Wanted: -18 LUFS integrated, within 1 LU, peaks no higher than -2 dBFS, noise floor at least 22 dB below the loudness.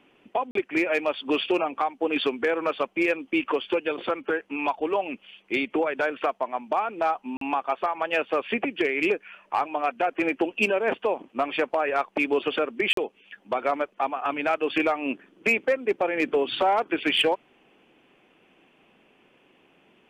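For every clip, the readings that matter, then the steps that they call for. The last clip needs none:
dropouts 3; longest dropout 43 ms; loudness -26.0 LUFS; peak -13.5 dBFS; loudness target -18.0 LUFS
-> interpolate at 0.51/7.37/12.93, 43 ms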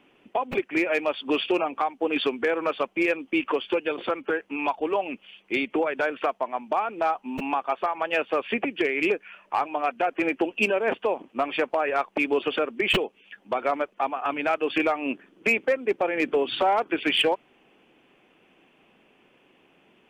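dropouts 0; loudness -26.0 LUFS; peak -8.0 dBFS; loudness target -18.0 LUFS
-> gain +8 dB; limiter -2 dBFS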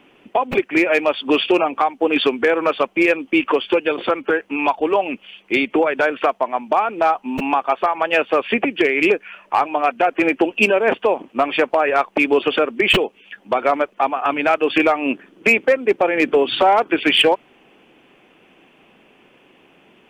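loudness -18.0 LUFS; peak -2.0 dBFS; noise floor -54 dBFS

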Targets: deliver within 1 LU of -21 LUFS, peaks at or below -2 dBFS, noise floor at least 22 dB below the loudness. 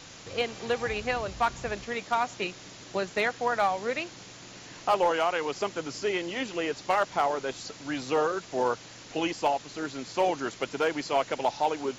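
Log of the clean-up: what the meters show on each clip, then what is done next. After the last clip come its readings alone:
clipped 0.3%; flat tops at -16.5 dBFS; noise floor -47 dBFS; noise floor target -52 dBFS; loudness -29.5 LUFS; peak -16.5 dBFS; loudness target -21.0 LUFS
-> clip repair -16.5 dBFS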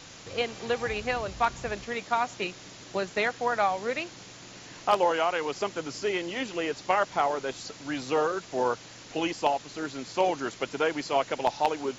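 clipped 0.0%; noise floor -47 dBFS; noise floor target -52 dBFS
-> denoiser 6 dB, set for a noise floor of -47 dBFS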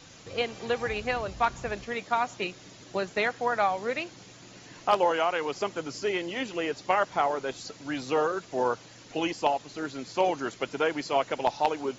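noise floor -50 dBFS; noise floor target -52 dBFS
-> denoiser 6 dB, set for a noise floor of -50 dBFS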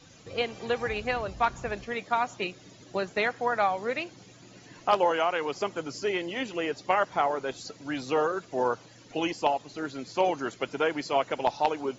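noise floor -53 dBFS; loudness -29.5 LUFS; peak -7.5 dBFS; loudness target -21.0 LUFS
-> gain +8.5 dB; limiter -2 dBFS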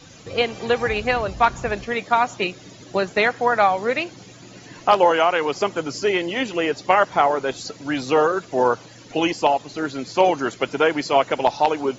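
loudness -21.0 LUFS; peak -2.0 dBFS; noise floor -44 dBFS

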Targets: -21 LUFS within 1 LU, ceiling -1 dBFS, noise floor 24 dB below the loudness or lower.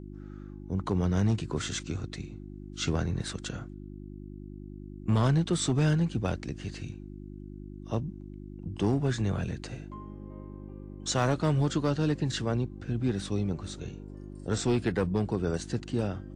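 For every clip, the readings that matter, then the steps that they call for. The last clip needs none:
clipped 0.5%; flat tops at -18.5 dBFS; hum 50 Hz; harmonics up to 350 Hz; hum level -41 dBFS; loudness -30.5 LUFS; peak -18.5 dBFS; loudness target -21.0 LUFS
-> clip repair -18.5 dBFS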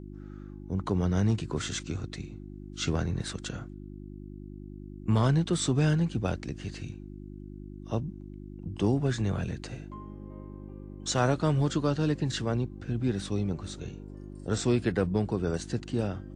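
clipped 0.0%; hum 50 Hz; harmonics up to 350 Hz; hum level -41 dBFS
-> de-hum 50 Hz, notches 7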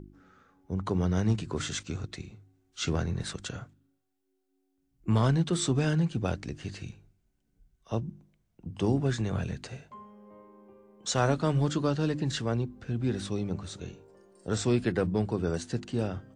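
hum none; loudness -30.5 LUFS; peak -13.0 dBFS; loudness target -21.0 LUFS
-> gain +9.5 dB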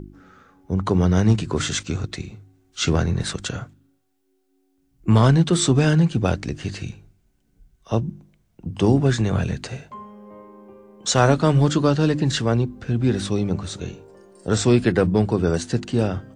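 loudness -21.0 LUFS; peak -3.5 dBFS; noise floor -66 dBFS

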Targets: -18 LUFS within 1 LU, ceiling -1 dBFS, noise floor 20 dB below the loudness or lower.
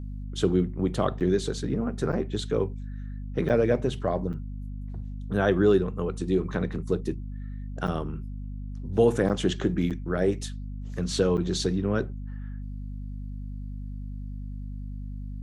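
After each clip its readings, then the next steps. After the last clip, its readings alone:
dropouts 8; longest dropout 7.6 ms; hum 50 Hz; harmonics up to 250 Hz; hum level -33 dBFS; loudness -27.5 LUFS; peak -9.0 dBFS; loudness target -18.0 LUFS
-> interpolate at 1.2/2.12/3.49/4.33/7.87/9.29/9.9/11.37, 7.6 ms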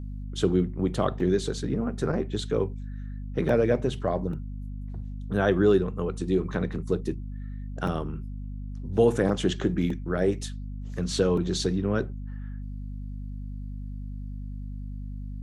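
dropouts 0; hum 50 Hz; harmonics up to 250 Hz; hum level -33 dBFS
-> notches 50/100/150/200/250 Hz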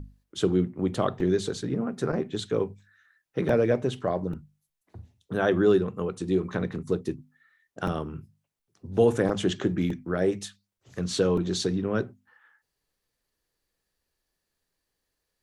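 hum none; loudness -27.5 LUFS; peak -9.5 dBFS; loudness target -18.0 LUFS
-> gain +9.5 dB; limiter -1 dBFS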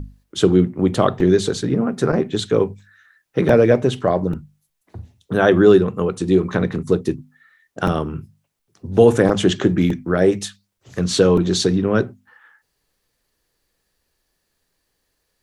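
loudness -18.0 LUFS; peak -1.0 dBFS; noise floor -73 dBFS

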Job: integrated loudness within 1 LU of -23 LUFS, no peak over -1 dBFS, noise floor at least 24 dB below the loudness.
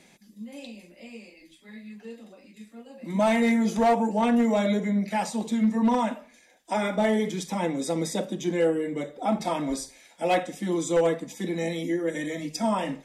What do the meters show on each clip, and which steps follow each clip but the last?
clipped 0.6%; flat tops at -16.0 dBFS; loudness -26.0 LUFS; peak -16.0 dBFS; loudness target -23.0 LUFS
-> clip repair -16 dBFS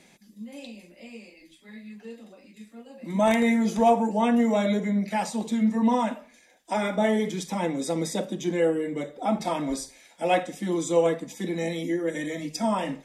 clipped 0.0%; loudness -25.5 LUFS; peak -7.0 dBFS; loudness target -23.0 LUFS
-> gain +2.5 dB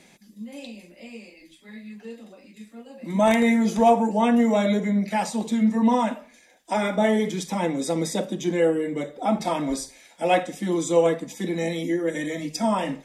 loudness -23.0 LUFS; peak -4.5 dBFS; noise floor -55 dBFS

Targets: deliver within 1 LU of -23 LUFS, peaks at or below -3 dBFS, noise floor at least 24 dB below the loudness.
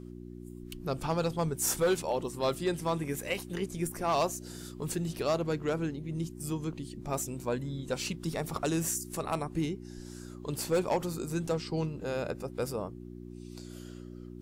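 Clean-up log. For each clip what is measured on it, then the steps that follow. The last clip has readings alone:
clipped 0.6%; flat tops at -21.5 dBFS; hum 60 Hz; harmonics up to 360 Hz; hum level -42 dBFS; loudness -33.0 LUFS; peak -21.5 dBFS; loudness target -23.0 LUFS
-> clip repair -21.5 dBFS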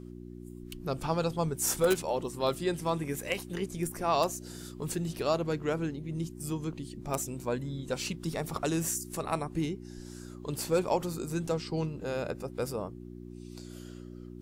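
clipped 0.0%; hum 60 Hz; harmonics up to 360 Hz; hum level -42 dBFS
-> de-hum 60 Hz, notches 6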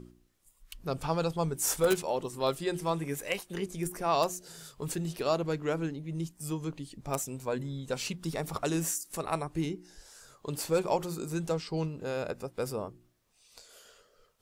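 hum none; loudness -33.0 LUFS; peak -12.0 dBFS; loudness target -23.0 LUFS
-> gain +10 dB; limiter -3 dBFS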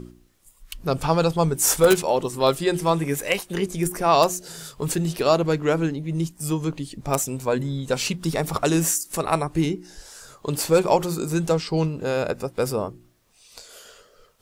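loudness -23.0 LUFS; peak -3.0 dBFS; noise floor -57 dBFS

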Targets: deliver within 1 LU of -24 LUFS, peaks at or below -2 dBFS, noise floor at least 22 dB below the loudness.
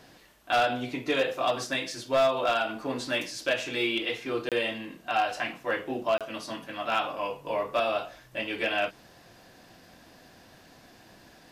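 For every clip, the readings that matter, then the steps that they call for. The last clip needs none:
clipped 0.4%; flat tops at -18.0 dBFS; dropouts 2; longest dropout 27 ms; loudness -29.0 LUFS; peak -18.0 dBFS; loudness target -24.0 LUFS
-> clip repair -18 dBFS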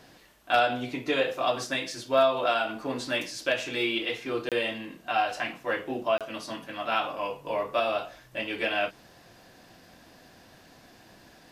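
clipped 0.0%; dropouts 2; longest dropout 27 ms
-> interpolate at 4.49/6.18, 27 ms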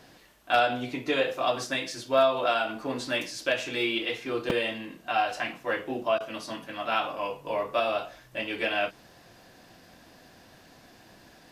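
dropouts 0; loudness -28.5 LUFS; peak -9.0 dBFS; loudness target -24.0 LUFS
-> gain +4.5 dB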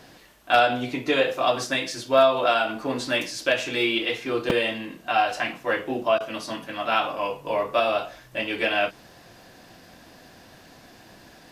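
loudness -24.0 LUFS; peak -4.5 dBFS; noise floor -51 dBFS

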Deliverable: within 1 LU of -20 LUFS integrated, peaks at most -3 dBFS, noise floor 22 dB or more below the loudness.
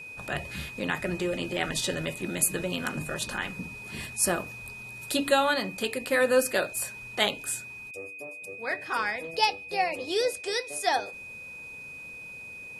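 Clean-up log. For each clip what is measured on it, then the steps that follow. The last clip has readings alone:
steady tone 2500 Hz; tone level -40 dBFS; loudness -29.0 LUFS; peak -8.5 dBFS; loudness target -20.0 LUFS
-> notch 2500 Hz, Q 30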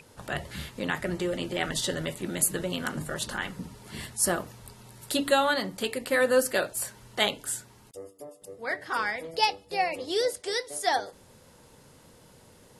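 steady tone none; loudness -28.5 LUFS; peak -9.0 dBFS; loudness target -20.0 LUFS
-> gain +8.5 dB; limiter -3 dBFS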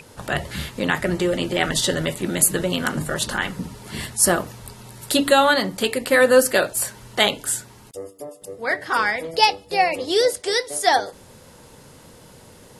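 loudness -20.5 LUFS; peak -3.0 dBFS; noise floor -47 dBFS

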